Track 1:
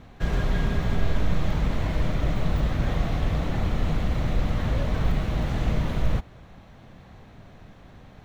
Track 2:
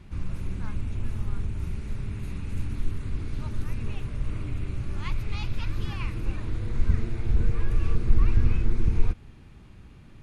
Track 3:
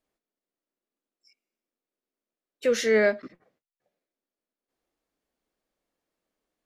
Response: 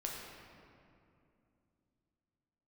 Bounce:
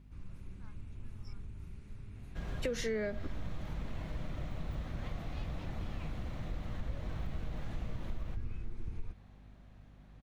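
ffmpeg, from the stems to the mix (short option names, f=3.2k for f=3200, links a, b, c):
-filter_complex "[0:a]bandreject=f=430:w=12,adelay=2150,volume=-15dB[a];[1:a]aeval=exprs='val(0)+0.0112*(sin(2*PI*50*n/s)+sin(2*PI*2*50*n/s)/2+sin(2*PI*3*50*n/s)/3+sin(2*PI*4*50*n/s)/4+sin(2*PI*5*50*n/s)/5)':c=same,volume=-16.5dB[b];[2:a]acrossover=split=370[c][d];[d]acompressor=threshold=-28dB:ratio=6[e];[c][e]amix=inputs=2:normalize=0,volume=-1dB[f];[a][b][f]amix=inputs=3:normalize=0,acompressor=threshold=-32dB:ratio=6"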